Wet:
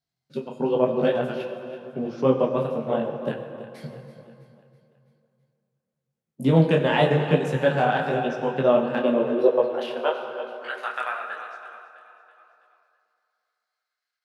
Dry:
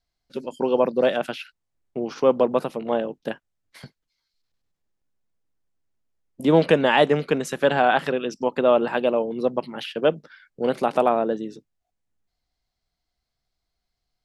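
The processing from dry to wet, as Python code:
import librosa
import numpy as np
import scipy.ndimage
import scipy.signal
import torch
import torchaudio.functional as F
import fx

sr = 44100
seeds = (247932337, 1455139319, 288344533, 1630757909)

p1 = fx.transient(x, sr, attack_db=2, sustain_db=-8)
p2 = fx.filter_sweep_highpass(p1, sr, from_hz=140.0, to_hz=1600.0, start_s=8.62, end_s=10.51, q=4.3)
p3 = p2 + fx.echo_feedback(p2, sr, ms=328, feedback_pct=51, wet_db=-14.5, dry=0)
p4 = fx.rev_fdn(p3, sr, rt60_s=2.7, lf_ratio=1.0, hf_ratio=0.65, size_ms=76.0, drr_db=4.5)
p5 = fx.detune_double(p4, sr, cents=33)
y = p5 * 10.0 ** (-1.0 / 20.0)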